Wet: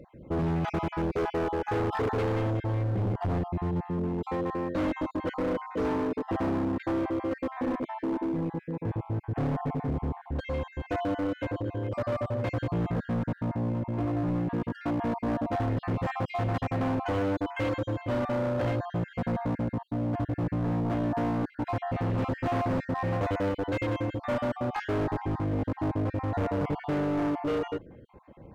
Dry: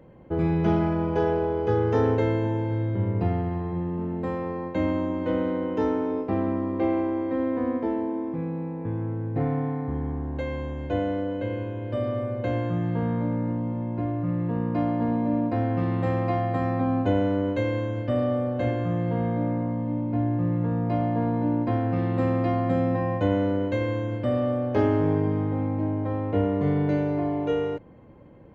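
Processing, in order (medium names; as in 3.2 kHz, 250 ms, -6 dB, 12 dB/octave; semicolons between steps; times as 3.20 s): random holes in the spectrogram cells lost 38%; phaser 0.31 Hz, delay 3.6 ms, feedback 22%; hard clipper -27 dBFS, distortion -8 dB; trim +1.5 dB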